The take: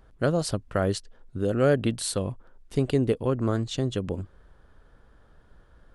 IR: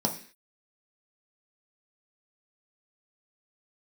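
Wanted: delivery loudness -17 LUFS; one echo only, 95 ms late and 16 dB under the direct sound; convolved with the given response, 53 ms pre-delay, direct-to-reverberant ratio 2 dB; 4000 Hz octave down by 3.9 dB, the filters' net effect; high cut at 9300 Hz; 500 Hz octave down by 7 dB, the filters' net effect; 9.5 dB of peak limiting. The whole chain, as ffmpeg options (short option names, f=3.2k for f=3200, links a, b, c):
-filter_complex "[0:a]lowpass=9.3k,equalizer=f=500:t=o:g=-8.5,equalizer=f=4k:t=o:g=-4.5,alimiter=limit=-22dB:level=0:latency=1,aecho=1:1:95:0.158,asplit=2[a][b];[1:a]atrim=start_sample=2205,adelay=53[c];[b][c]afir=irnorm=-1:irlink=0,volume=-10.5dB[d];[a][d]amix=inputs=2:normalize=0,volume=12.5dB"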